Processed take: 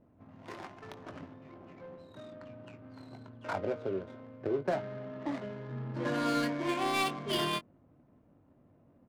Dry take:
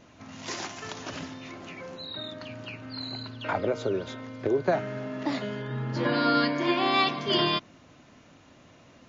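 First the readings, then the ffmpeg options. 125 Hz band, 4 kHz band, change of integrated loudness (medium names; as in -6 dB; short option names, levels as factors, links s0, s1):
-6.5 dB, -9.5 dB, -5.5 dB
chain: -filter_complex "[0:a]adynamicsmooth=sensitivity=4:basefreq=600,asplit=2[s0][s1];[s1]adelay=21,volume=0.335[s2];[s0][s2]amix=inputs=2:normalize=0,volume=0.447"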